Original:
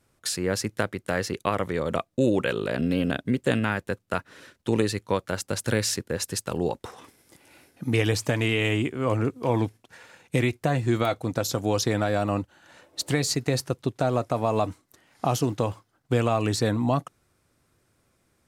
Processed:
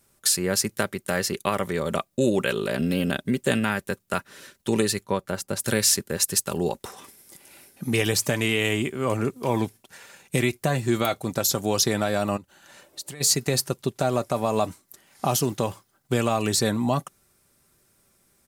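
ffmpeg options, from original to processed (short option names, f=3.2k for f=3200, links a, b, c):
-filter_complex "[0:a]asplit=3[a][b][c];[a]afade=t=out:st=5.03:d=0.02[d];[b]highshelf=f=2.2k:g=-9,afade=t=in:st=5.03:d=0.02,afade=t=out:st=5.59:d=0.02[e];[c]afade=t=in:st=5.59:d=0.02[f];[d][e][f]amix=inputs=3:normalize=0,asplit=3[g][h][i];[g]afade=t=out:st=12.36:d=0.02[j];[h]acompressor=threshold=-42dB:ratio=3:attack=3.2:release=140:knee=1:detection=peak,afade=t=in:st=12.36:d=0.02,afade=t=out:st=13.2:d=0.02[k];[i]afade=t=in:st=13.2:d=0.02[l];[j][k][l]amix=inputs=3:normalize=0,aemphasis=mode=production:type=50kf,aecho=1:1:5.1:0.36"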